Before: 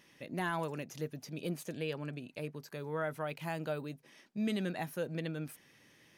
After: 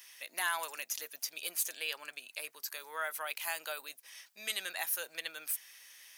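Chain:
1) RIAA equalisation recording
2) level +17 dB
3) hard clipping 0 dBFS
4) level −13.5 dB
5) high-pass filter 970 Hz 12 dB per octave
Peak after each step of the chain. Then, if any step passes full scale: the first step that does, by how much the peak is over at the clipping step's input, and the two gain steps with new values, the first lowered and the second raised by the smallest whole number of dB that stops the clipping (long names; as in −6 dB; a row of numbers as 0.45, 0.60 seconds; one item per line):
−20.0, −3.0, −3.0, −16.5, −17.5 dBFS
no step passes full scale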